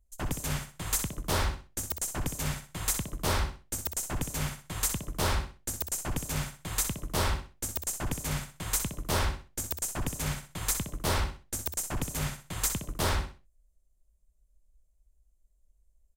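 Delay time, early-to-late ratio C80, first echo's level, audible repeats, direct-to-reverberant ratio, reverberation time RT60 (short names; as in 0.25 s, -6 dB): 63 ms, none, -8.5 dB, 3, none, none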